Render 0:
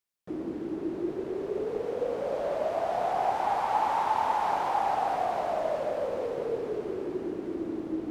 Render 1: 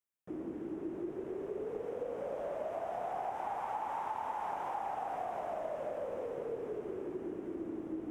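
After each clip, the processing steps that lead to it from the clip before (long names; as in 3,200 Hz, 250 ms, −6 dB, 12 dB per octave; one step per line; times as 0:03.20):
parametric band 4,300 Hz −14 dB 0.57 octaves
downward compressor 4 to 1, threshold −29 dBFS, peak gain reduction 7 dB
level −6 dB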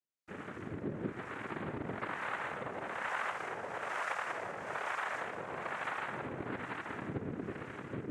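cochlear-implant simulation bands 3
two-band tremolo in antiphase 1.1 Hz, depth 70%, crossover 670 Hz
level +2.5 dB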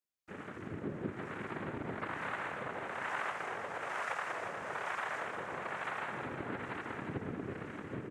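single-tap delay 358 ms −7.5 dB
level −1 dB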